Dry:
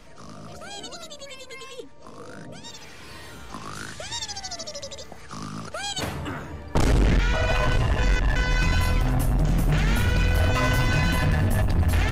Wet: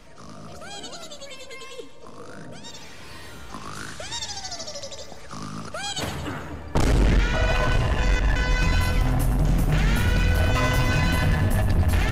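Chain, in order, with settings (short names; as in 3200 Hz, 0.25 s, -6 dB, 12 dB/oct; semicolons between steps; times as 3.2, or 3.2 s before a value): split-band echo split 890 Hz, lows 0.243 s, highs 0.109 s, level -11 dB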